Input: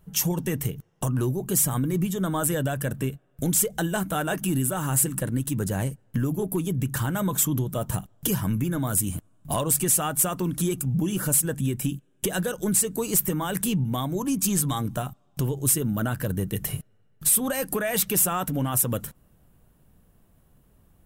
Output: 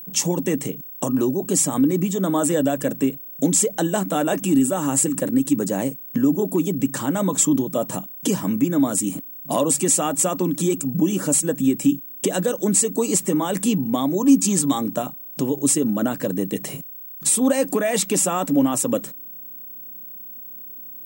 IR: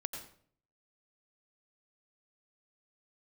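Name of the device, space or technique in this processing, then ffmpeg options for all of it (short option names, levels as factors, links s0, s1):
old television with a line whistle: -af "highpass=f=180:w=0.5412,highpass=f=180:w=1.3066,equalizer=f=280:t=q:w=4:g=9,equalizer=f=550:t=q:w=4:g=5,equalizer=f=1500:t=q:w=4:g=-7,equalizer=f=3000:t=q:w=4:g=-3,equalizer=f=7400:t=q:w=4:g=5,lowpass=f=8600:w=0.5412,lowpass=f=8600:w=1.3066,aeval=exprs='val(0)+0.0112*sin(2*PI*15734*n/s)':c=same,volume=1.68"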